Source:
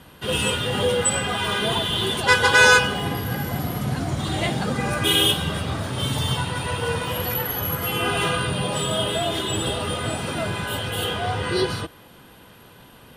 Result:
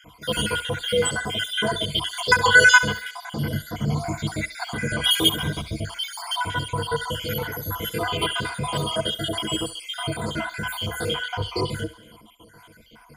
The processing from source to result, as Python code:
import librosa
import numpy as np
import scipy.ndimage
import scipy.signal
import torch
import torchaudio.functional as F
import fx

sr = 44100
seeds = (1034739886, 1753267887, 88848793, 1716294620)

p1 = fx.spec_dropout(x, sr, seeds[0], share_pct=57)
p2 = fx.ripple_eq(p1, sr, per_octave=1.8, db=13)
p3 = p2 + fx.echo_thinned(p2, sr, ms=68, feedback_pct=50, hz=610.0, wet_db=-13.5, dry=0)
y = p3 * librosa.db_to_amplitude(-1.0)